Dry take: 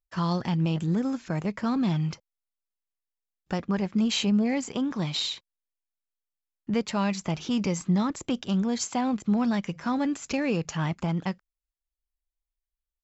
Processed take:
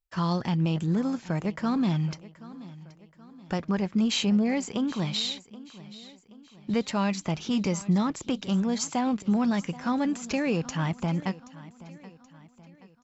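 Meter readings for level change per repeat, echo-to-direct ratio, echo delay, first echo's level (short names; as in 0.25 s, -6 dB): -6.5 dB, -17.5 dB, 0.777 s, -18.5 dB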